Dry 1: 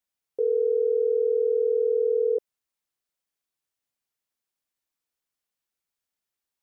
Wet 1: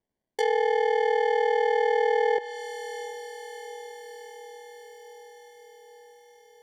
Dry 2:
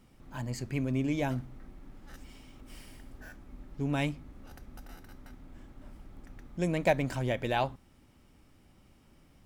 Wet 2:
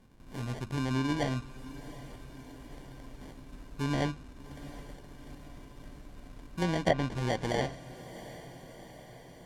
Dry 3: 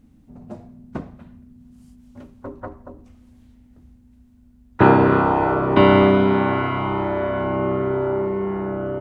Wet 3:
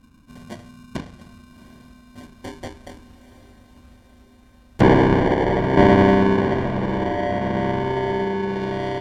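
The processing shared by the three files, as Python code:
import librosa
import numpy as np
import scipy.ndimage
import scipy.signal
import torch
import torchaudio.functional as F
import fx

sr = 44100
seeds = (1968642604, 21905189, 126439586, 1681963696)

y = fx.sample_hold(x, sr, seeds[0], rate_hz=1300.0, jitter_pct=0)
y = fx.echo_diffused(y, sr, ms=739, feedback_pct=64, wet_db=-16)
y = fx.env_lowpass_down(y, sr, base_hz=1900.0, full_db=-19.5)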